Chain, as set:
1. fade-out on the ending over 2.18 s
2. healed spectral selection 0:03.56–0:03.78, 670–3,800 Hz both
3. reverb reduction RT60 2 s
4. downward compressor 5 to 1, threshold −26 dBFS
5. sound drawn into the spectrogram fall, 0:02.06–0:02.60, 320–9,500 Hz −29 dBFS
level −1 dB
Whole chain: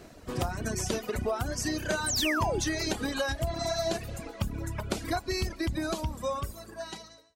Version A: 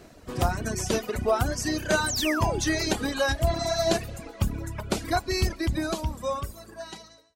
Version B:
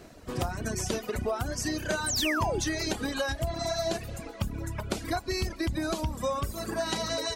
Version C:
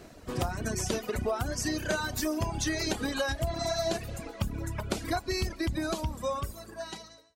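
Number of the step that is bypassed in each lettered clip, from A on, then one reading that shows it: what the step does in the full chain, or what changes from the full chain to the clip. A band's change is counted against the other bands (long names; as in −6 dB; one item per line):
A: 4, average gain reduction 3.0 dB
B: 1, change in momentary loudness spread −4 LU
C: 5, change in momentary loudness spread −3 LU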